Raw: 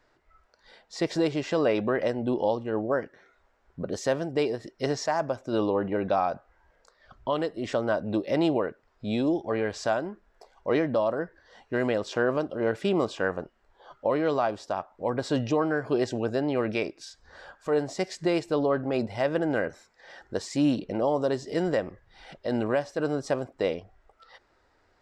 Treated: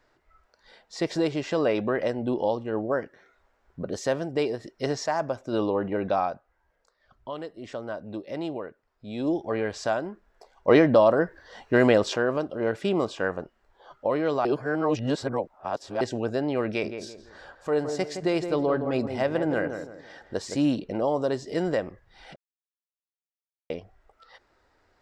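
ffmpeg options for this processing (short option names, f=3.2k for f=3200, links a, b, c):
-filter_complex "[0:a]asettb=1/sr,asplit=3[a][b][c];[a]atrim=end=16.674[d];[b]atrim=start=16.67:end=20.66,asetpts=PTS-STARTPTS,afade=t=in:d=0.004:c=qsin,afade=t=out:st=3.986:d=0.004:c=qsin,asplit=2[e][f];[f]adelay=166,lowpass=f=1.4k:p=1,volume=-7dB,asplit=2[g][h];[h]adelay=166,lowpass=f=1.4k:p=1,volume=0.36,asplit=2[i][j];[j]adelay=166,lowpass=f=1.4k:p=1,volume=0.36,asplit=2[k][l];[l]adelay=166,lowpass=f=1.4k:p=1,volume=0.36[m];[e][g][i][k][m]amix=inputs=5:normalize=0,atrim=end_sample=175959[n];[c]atrim=start=20.656[o];[d][n]acrossfade=d=0.004:c1=hsin:c2=qsin[p];[p][o]acrossfade=d=0.004:c1=qsin:c2=hsin,asplit=9[q][r][s][t][u][v][w][x][y];[q]atrim=end=6.4,asetpts=PTS-STARTPTS,afade=t=out:st=6.24:d=0.16:silence=0.398107[z];[r]atrim=start=6.4:end=9.14,asetpts=PTS-STARTPTS,volume=-8dB[aa];[s]atrim=start=9.14:end=10.682,asetpts=PTS-STARTPTS,afade=t=in:d=0.16:silence=0.398107[ab];[t]atrim=start=10.678:end=12.162,asetpts=PTS-STARTPTS,volume=7.5dB[ac];[u]atrim=start=12.158:end=14.452[ad];[v]atrim=start=14.448:end=16.012,asetpts=PTS-STARTPTS,areverse[ae];[w]atrim=start=16.008:end=22.36,asetpts=PTS-STARTPTS,afade=t=out:st=6.348:d=0.004:c=hsin[af];[x]atrim=start=22.36:end=23.7,asetpts=PTS-STARTPTS,volume=0[ag];[y]atrim=start=23.7,asetpts=PTS-STARTPTS,afade=t=in:d=0.004:c=hsin[ah];[z][aa][ab]concat=n=3:v=0:a=1[ai];[ai][ac]acrossfade=d=0.004:c1=hsin:c2=hsin[aj];[aj][ad]acrossfade=d=0.004:c1=hsin:c2=hsin[ak];[ak][ae]acrossfade=d=0.004:c1=hsin:c2=hsin[al];[af][ag][ah]concat=n=3:v=0:a=1[am];[al][am]acrossfade=d=0.004:c1=hsin:c2=hsin"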